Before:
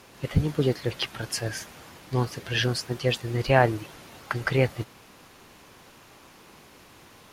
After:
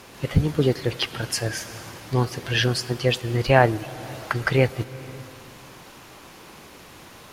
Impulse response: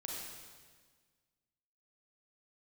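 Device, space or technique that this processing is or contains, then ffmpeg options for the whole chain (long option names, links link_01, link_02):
ducked reverb: -filter_complex "[0:a]asplit=3[link_01][link_02][link_03];[1:a]atrim=start_sample=2205[link_04];[link_02][link_04]afir=irnorm=-1:irlink=0[link_05];[link_03]apad=whole_len=323239[link_06];[link_05][link_06]sidechaincompress=threshold=-36dB:ratio=8:attack=16:release=323,volume=-3.5dB[link_07];[link_01][link_07]amix=inputs=2:normalize=0,volume=3dB"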